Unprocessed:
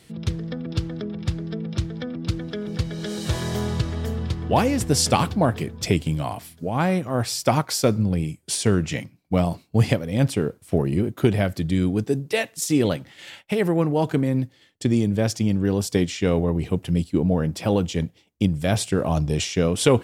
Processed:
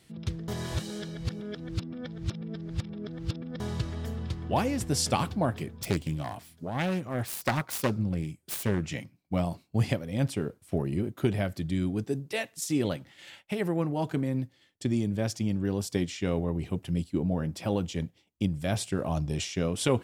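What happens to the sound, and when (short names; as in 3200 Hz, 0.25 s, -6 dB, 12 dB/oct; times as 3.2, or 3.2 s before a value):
0.48–3.6 reverse
5.83–8.83 self-modulated delay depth 0.4 ms
whole clip: notch 460 Hz, Q 12; gain -7.5 dB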